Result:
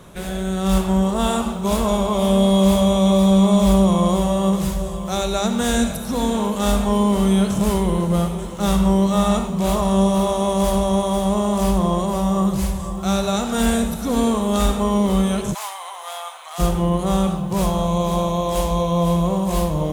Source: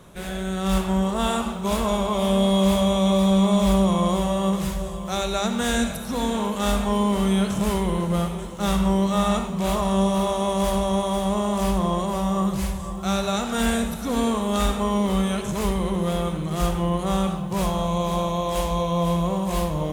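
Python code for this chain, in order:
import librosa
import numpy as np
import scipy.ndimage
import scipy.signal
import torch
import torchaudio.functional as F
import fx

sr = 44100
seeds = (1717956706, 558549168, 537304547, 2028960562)

y = fx.ellip_highpass(x, sr, hz=740.0, order=4, stop_db=70, at=(15.53, 16.58), fade=0.02)
y = fx.dynamic_eq(y, sr, hz=2000.0, q=0.72, threshold_db=-42.0, ratio=4.0, max_db=-5)
y = y * librosa.db_to_amplitude(4.5)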